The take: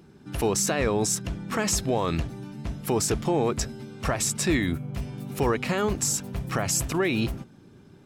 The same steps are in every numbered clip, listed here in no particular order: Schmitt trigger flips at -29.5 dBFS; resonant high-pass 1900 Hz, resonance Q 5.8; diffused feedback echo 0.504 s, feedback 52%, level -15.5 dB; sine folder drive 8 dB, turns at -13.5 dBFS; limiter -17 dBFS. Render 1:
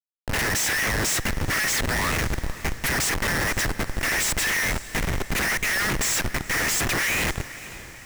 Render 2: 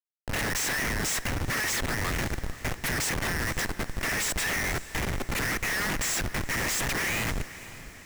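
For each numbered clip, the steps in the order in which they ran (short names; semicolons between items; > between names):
sine folder > limiter > resonant high-pass > Schmitt trigger > diffused feedback echo; sine folder > resonant high-pass > limiter > Schmitt trigger > diffused feedback echo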